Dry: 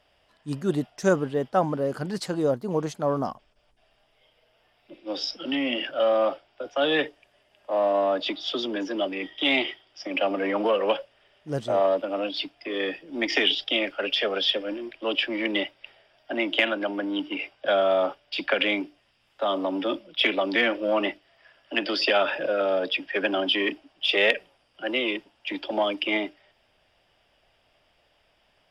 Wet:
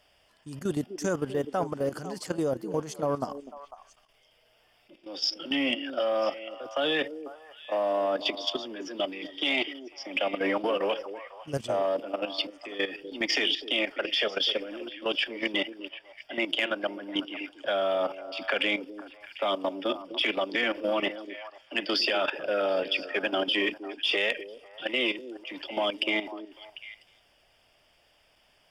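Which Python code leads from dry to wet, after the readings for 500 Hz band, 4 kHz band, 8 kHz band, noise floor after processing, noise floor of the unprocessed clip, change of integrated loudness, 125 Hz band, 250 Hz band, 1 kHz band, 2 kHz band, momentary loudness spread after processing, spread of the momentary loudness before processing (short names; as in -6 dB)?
-4.5 dB, -2.0 dB, n/a, -65 dBFS, -66 dBFS, -3.5 dB, -5.0 dB, -4.5 dB, -4.0 dB, -3.0 dB, 14 LU, 9 LU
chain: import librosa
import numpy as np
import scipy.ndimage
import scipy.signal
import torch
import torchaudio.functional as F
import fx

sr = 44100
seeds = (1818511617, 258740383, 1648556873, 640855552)

p1 = fx.high_shelf(x, sr, hz=3700.0, db=9.5)
p2 = fx.notch(p1, sr, hz=3900.0, q=7.2)
p3 = fx.level_steps(p2, sr, step_db=13)
p4 = 10.0 ** (-10.5 / 20.0) * np.tanh(p3 / 10.0 ** (-10.5 / 20.0))
y = p4 + fx.echo_stepped(p4, sr, ms=249, hz=350.0, octaves=1.4, feedback_pct=70, wet_db=-8.5, dry=0)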